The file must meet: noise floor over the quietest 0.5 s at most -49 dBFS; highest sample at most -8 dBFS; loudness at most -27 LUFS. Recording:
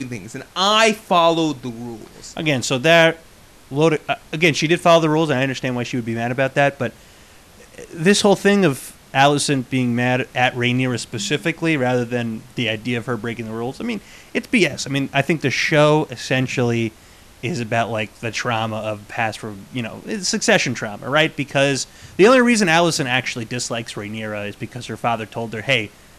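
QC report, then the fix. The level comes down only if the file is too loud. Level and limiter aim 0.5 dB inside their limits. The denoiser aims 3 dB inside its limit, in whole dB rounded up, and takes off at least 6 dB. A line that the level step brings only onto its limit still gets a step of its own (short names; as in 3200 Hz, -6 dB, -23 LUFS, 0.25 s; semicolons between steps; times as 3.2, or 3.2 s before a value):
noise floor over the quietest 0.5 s -46 dBFS: fail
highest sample -3.5 dBFS: fail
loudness -19.0 LUFS: fail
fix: gain -8.5 dB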